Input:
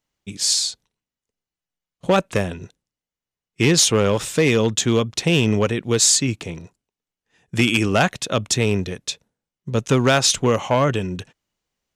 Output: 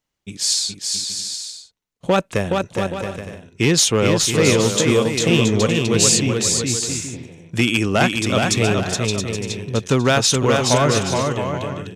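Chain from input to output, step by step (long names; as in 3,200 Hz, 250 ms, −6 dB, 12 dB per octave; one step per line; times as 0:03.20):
bouncing-ball delay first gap 420 ms, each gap 0.6×, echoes 5
healed spectral selection 0:06.96–0:07.41, 910–5,200 Hz both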